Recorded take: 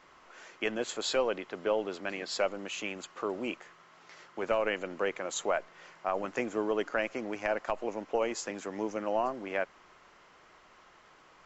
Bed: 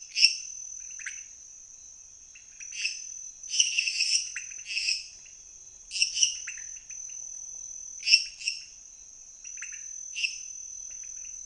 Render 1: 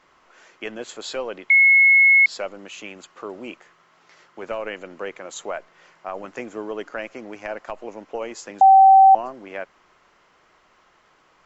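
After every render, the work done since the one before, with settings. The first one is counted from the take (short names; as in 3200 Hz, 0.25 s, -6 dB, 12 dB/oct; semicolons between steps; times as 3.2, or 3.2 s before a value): 1.5–2.26 bleep 2180 Hz -10 dBFS; 8.61–9.15 bleep 772 Hz -7 dBFS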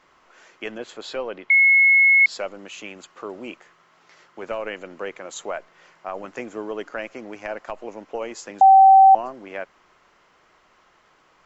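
0.78–2.21 air absorption 100 m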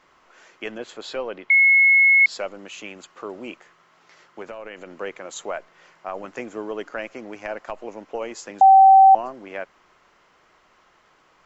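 4.42–4.99 compressor 5:1, threshold -32 dBFS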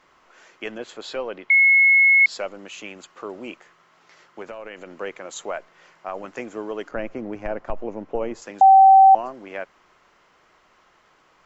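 6.91–8.42 tilt -3.5 dB/oct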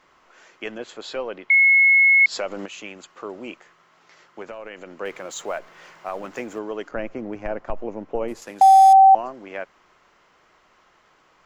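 1.54–2.66 upward compressor, threshold -20 dBFS; 5.05–6.59 G.711 law mismatch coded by mu; 8.28–8.93 CVSD 64 kbps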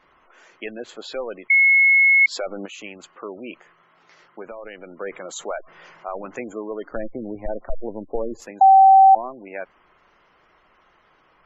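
low shelf 81 Hz +5 dB; spectral gate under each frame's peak -20 dB strong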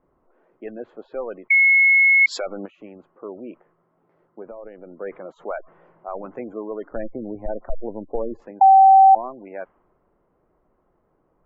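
low-pass opened by the level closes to 480 Hz, open at -16 dBFS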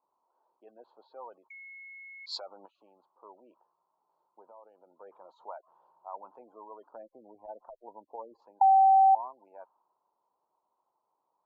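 double band-pass 2000 Hz, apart 2.2 oct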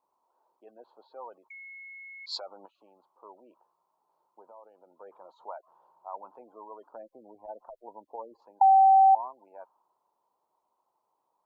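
gain +2 dB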